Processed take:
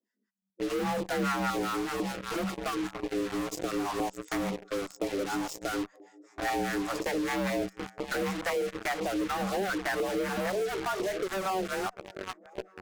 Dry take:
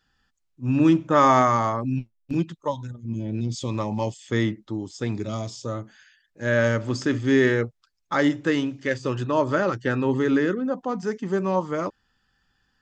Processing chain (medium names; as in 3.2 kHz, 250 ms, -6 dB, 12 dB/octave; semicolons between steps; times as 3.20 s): one-sided wavefolder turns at -20.5 dBFS; band-stop 820 Hz, Q 16; on a send: shuffle delay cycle 1216 ms, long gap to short 1.5:1, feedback 39%, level -20 dB; on the sum: spectral noise reduction 8 dB; harmonic tremolo 5 Hz, depth 100%, crossover 510 Hz; frequency shift +190 Hz; peaking EQ 3.5 kHz -14 dB 1.2 oct; in parallel at -11 dB: fuzz box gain 49 dB, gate -43 dBFS; on the sum: LFO notch saw down 2 Hz 310–1700 Hz; compression 2.5:1, threshold -31 dBFS, peak gain reduction 9.5 dB